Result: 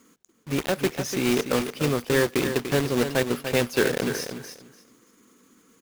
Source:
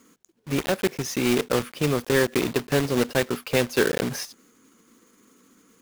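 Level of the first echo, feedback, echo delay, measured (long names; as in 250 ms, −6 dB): −8.5 dB, 19%, 293 ms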